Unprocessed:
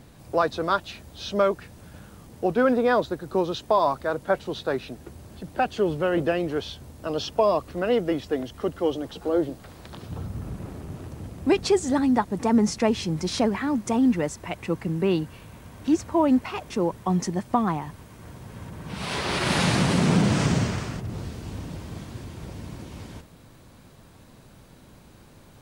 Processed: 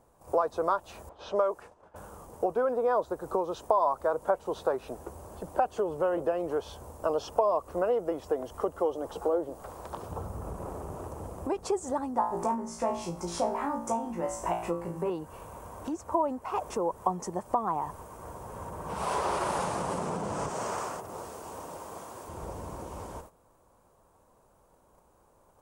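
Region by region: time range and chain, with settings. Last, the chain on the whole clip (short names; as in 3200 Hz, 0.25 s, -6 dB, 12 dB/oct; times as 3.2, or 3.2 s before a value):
1.09–1.96 low-pass opened by the level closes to 2300 Hz, open at -20.5 dBFS + tone controls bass -9 dB, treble -1 dB
12.14–15.1 notch 460 Hz, Q 9.5 + flutter echo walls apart 3 m, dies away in 0.39 s
20.49–22.29 HPF 500 Hz 6 dB/oct + high shelf 8700 Hz +4 dB
whole clip: compressor, threshold -29 dBFS; graphic EQ 125/250/500/1000/2000/4000/8000 Hz -8/-6/+6/+10/-8/-11/+4 dB; gate -47 dBFS, range -13 dB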